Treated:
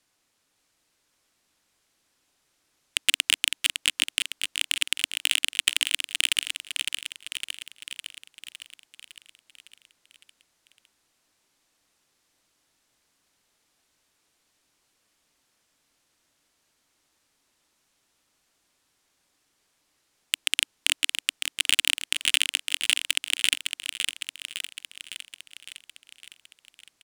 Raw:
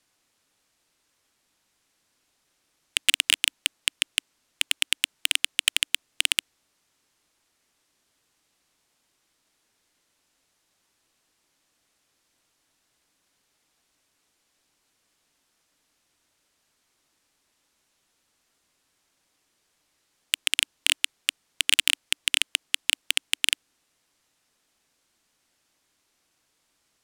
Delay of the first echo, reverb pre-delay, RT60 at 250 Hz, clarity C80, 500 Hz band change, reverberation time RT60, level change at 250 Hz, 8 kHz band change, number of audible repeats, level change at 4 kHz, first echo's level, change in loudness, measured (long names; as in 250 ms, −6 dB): 558 ms, no reverb audible, no reverb audible, no reverb audible, +0.5 dB, no reverb audible, +0.5 dB, +0.5 dB, 7, +0.5 dB, −6.0 dB, −1.0 dB